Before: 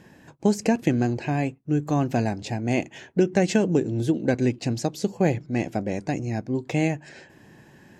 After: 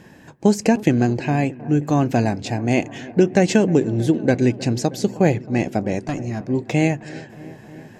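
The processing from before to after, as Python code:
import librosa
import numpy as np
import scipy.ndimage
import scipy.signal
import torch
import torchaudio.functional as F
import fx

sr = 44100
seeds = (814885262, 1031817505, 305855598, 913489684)

y = fx.tube_stage(x, sr, drive_db=20.0, bias=0.5, at=(5.99, 6.4))
y = fx.echo_wet_lowpass(y, sr, ms=314, feedback_pct=76, hz=1600.0, wet_db=-19)
y = F.gain(torch.from_numpy(y), 5.0).numpy()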